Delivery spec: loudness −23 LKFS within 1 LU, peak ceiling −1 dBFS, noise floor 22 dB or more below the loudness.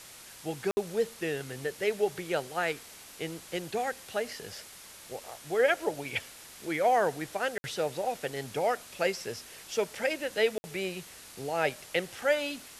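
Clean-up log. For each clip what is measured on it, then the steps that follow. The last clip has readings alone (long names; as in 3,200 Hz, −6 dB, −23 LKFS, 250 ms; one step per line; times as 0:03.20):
number of dropouts 3; longest dropout 60 ms; background noise floor −50 dBFS; target noise floor −54 dBFS; integrated loudness −31.5 LKFS; sample peak −12.5 dBFS; target loudness −23.0 LKFS
→ repair the gap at 0:00.71/0:07.58/0:10.58, 60 ms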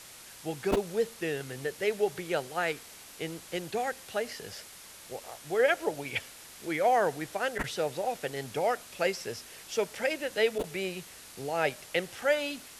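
number of dropouts 0; background noise floor −50 dBFS; target noise floor −54 dBFS
→ broadband denoise 6 dB, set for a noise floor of −50 dBFS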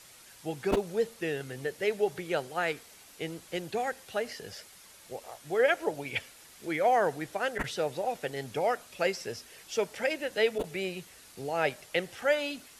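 background noise floor −54 dBFS; integrated loudness −31.5 LKFS; sample peak −12.5 dBFS; target loudness −23.0 LKFS
→ level +8.5 dB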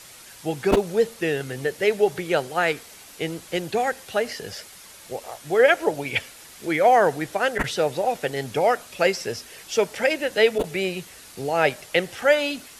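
integrated loudness −23.0 LKFS; sample peak −4.0 dBFS; background noise floor −46 dBFS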